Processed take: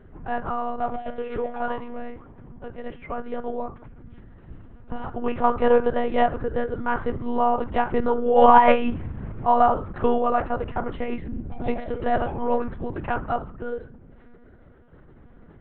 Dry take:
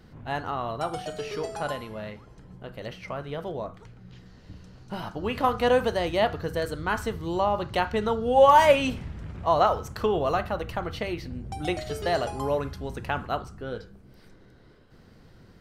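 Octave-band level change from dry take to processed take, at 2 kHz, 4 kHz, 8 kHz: 0.0 dB, −7.5 dB, below −35 dB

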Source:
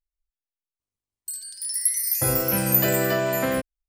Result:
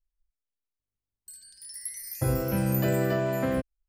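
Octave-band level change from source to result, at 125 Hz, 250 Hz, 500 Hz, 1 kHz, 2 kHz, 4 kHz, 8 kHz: +1.5, −1.0, −3.5, −5.5, −8.0, −11.0, −14.0 decibels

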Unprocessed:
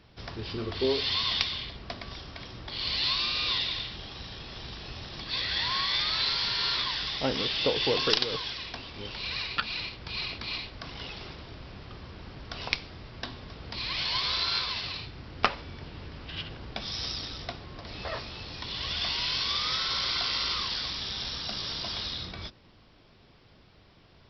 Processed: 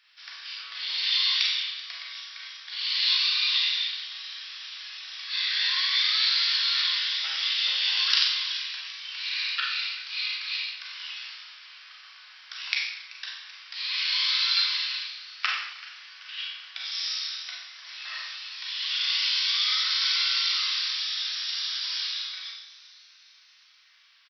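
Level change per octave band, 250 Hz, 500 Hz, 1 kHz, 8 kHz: below −40 dB, below −30 dB, −5.5 dB, can't be measured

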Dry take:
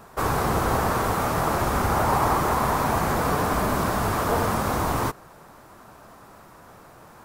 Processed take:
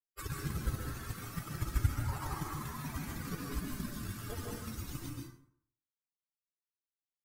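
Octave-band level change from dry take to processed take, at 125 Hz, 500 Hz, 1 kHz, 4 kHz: −9.5, −24.0, −24.0, −14.0 decibels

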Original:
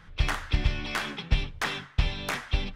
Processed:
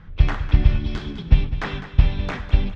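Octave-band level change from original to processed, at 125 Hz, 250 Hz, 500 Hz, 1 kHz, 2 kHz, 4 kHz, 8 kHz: +10.5 dB, +8.5 dB, +4.5 dB, +0.5 dB, −1.5 dB, −3.0 dB, below −10 dB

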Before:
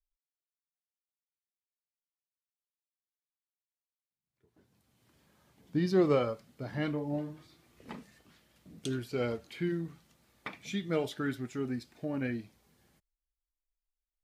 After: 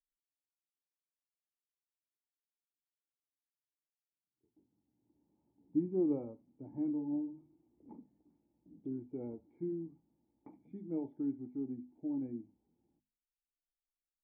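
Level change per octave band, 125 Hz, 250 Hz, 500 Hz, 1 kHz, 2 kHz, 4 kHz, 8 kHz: −12.0 dB, −2.5 dB, −9.5 dB, −17.5 dB, below −35 dB, below −35 dB, below −25 dB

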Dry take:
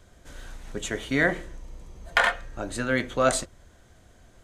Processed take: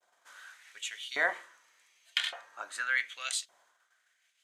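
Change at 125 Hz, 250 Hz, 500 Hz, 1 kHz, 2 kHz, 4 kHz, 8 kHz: below −35 dB, −28.0 dB, −16.5 dB, −12.0 dB, −5.5 dB, −0.5 dB, −5.5 dB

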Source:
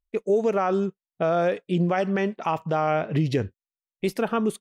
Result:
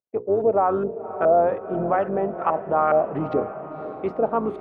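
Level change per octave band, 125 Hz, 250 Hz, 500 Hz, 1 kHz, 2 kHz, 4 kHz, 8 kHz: −7.5 dB, −3.0 dB, +3.5 dB, +5.0 dB, −3.5 dB, below −15 dB, can't be measured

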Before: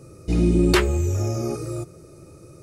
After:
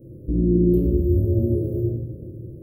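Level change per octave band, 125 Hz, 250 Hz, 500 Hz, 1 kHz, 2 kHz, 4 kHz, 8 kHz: +2.5 dB, +2.0 dB, +1.5 dB, below −25 dB, below −40 dB, below −40 dB, below −30 dB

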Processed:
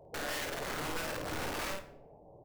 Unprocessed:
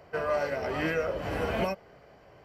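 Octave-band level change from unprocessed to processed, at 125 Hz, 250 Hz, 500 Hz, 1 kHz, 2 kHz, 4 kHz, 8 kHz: −8.5, −8.0, −11.5, −5.5, −4.0, +2.5, +11.0 decibels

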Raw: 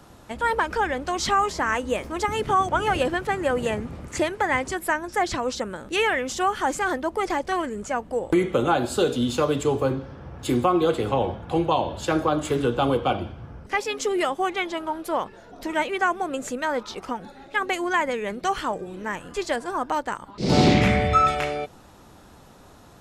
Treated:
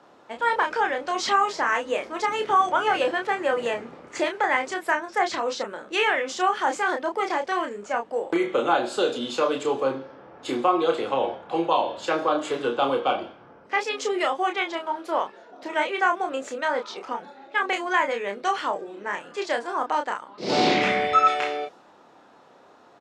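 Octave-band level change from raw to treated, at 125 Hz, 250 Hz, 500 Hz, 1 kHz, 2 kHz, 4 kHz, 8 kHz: −16.5, −5.5, −0.5, +1.0, +1.0, +0.5, −4.5 decibels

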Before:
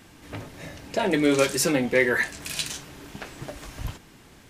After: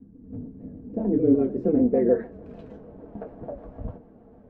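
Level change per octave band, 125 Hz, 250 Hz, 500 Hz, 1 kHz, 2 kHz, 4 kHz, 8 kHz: 0.0 dB, +4.0 dB, +0.5 dB, −9.5 dB, below −25 dB, below −40 dB, below −40 dB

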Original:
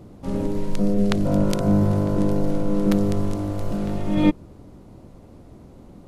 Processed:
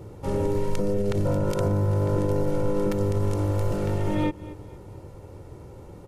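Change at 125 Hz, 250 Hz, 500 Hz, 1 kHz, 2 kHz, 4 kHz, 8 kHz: −0.5, −7.5, +0.5, −0.5, −3.0, −6.0, −2.5 decibels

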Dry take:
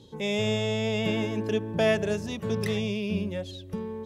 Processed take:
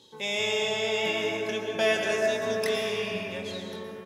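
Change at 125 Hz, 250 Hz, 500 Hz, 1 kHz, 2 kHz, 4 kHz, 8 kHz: −13.0, −8.5, +1.0, +3.0, +5.0, +4.5, +5.0 decibels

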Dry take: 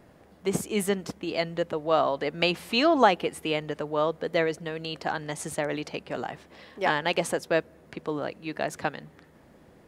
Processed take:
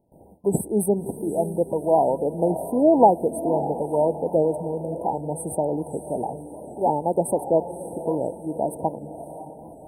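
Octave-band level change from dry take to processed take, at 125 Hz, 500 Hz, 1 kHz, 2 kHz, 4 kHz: +6.0 dB, +6.0 dB, +4.5 dB, below −40 dB, below −40 dB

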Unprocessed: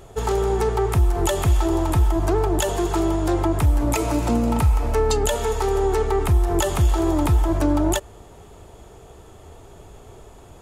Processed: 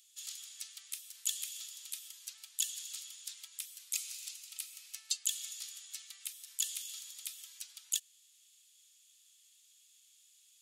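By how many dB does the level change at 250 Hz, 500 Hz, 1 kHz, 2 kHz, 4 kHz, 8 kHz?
below −40 dB, below −40 dB, below −40 dB, −20.5 dB, −7.0 dB, −5.0 dB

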